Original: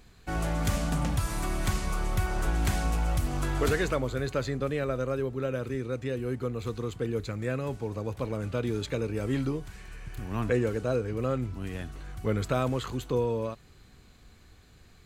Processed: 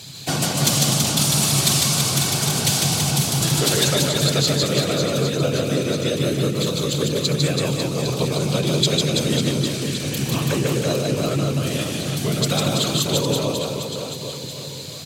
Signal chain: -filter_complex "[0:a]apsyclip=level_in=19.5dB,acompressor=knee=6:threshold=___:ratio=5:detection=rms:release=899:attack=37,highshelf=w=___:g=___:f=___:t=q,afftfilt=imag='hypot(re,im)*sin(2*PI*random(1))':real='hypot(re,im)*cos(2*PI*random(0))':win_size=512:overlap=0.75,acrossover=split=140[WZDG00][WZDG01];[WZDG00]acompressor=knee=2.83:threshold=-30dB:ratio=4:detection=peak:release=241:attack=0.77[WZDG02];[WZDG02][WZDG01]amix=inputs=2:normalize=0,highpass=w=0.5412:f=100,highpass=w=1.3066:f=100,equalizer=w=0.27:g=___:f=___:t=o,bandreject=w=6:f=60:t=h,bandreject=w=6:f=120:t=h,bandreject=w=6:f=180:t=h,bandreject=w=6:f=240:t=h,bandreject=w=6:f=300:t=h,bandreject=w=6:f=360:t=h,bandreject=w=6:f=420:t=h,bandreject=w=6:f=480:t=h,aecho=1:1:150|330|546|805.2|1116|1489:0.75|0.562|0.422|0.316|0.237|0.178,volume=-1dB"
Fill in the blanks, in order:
-13dB, 1.5, 13, 2600, 12.5, 140